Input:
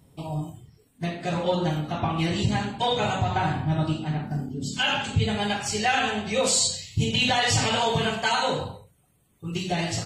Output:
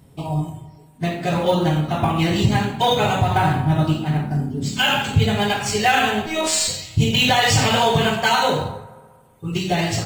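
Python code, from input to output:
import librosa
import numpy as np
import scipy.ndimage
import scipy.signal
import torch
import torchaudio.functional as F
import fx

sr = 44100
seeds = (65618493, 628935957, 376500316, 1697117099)

p1 = fx.robotise(x, sr, hz=318.0, at=(6.26, 6.68))
p2 = fx.sample_hold(p1, sr, seeds[0], rate_hz=10000.0, jitter_pct=0)
p3 = p1 + (p2 * librosa.db_to_amplitude(-11.5))
p4 = fx.rev_fdn(p3, sr, rt60_s=1.7, lf_ratio=0.9, hf_ratio=0.5, size_ms=43.0, drr_db=12.5)
y = p4 * librosa.db_to_amplitude(4.5)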